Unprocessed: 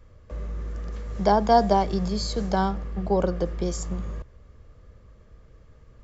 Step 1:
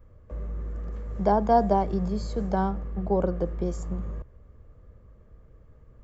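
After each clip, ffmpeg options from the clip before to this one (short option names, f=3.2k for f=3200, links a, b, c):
-af "equalizer=f=4.8k:w=0.51:g=-14,volume=-1dB"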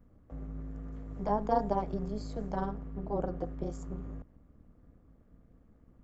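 -af "tremolo=f=210:d=0.889,volume=-4.5dB"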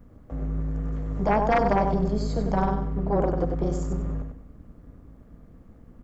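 -af "aecho=1:1:96|192|288|384:0.501|0.15|0.0451|0.0135,aeval=exprs='0.237*sin(PI/2*2.51*val(0)/0.237)':c=same,volume=-1.5dB"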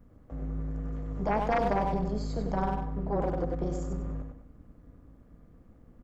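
-filter_complex "[0:a]asplit=2[a][b];[b]adelay=100,highpass=300,lowpass=3.4k,asoftclip=type=hard:threshold=-22dB,volume=-7dB[c];[a][c]amix=inputs=2:normalize=0,volume=-6dB"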